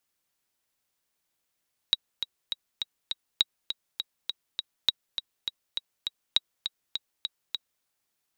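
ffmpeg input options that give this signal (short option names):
-f lavfi -i "aevalsrc='pow(10,(-7.5-9*gte(mod(t,5*60/203),60/203))/20)*sin(2*PI*3830*mod(t,60/203))*exp(-6.91*mod(t,60/203)/0.03)':d=5.91:s=44100"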